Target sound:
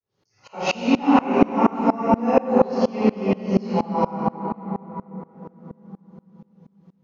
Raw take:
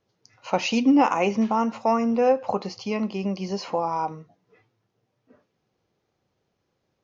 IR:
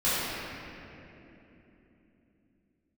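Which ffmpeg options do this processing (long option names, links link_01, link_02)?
-filter_complex "[0:a]asettb=1/sr,asplit=3[link_01][link_02][link_03];[link_01]atrim=end=1.054[link_04];[link_02]atrim=start=1.05:end=2.05,asetpts=PTS-STARTPTS,afade=type=in:duration=0.004:curve=qsin,afade=type=out:start_time=0.996:duration=0.004:curve=qsin,acrossover=split=2900[link_05][link_06];[link_06]acompressor=threshold=-51dB:ratio=4:attack=1:release=60[link_07];[link_05][link_07]amix=inputs=2:normalize=0[link_08];[link_03]atrim=start=2.046[link_09];[link_04][link_08]acrossfade=duration=0.004:curve1=hsin:curve2=qsin[link_10];[link_10][link_09]acrossfade=duration=0.004:curve1=qsin:curve2=hsin,asettb=1/sr,asplit=3[link_11][link_12][link_13];[link_11]atrim=end=3.334[link_14];[link_12]atrim=start=3.33:end=4.03,asetpts=PTS-STARTPTS,afade=type=in:duration=0.004:curve=qsin,afade=type=out:start_time=0.696:duration=0.004:curve=qsin,bass=frequency=250:gain=3,treble=frequency=4000:gain=-5[link_15];[link_13]atrim=start=4.026[link_16];[link_14][link_15]acrossfade=duration=0.004:curve1=hsin:curve2=qsin[link_17];[link_17][link_16]acrossfade=duration=0.004:curve1=qsin:curve2=hsin[link_18];[1:a]atrim=start_sample=2205,asetrate=33957,aresample=44100[link_19];[link_18][link_19]afir=irnorm=-1:irlink=0,aeval=exprs='val(0)*pow(10,-25*if(lt(mod(-4.2*n/s,1),2*abs(-4.2)/1000),1-mod(-4.2*n/s,1)/(2*abs(-4.2)/1000),(mod(-4.2*n/s,1)-2*abs(-4.2)/1000)/(1-2*abs(-4.2)/1000))/20)':channel_layout=same,volume=-6.5dB"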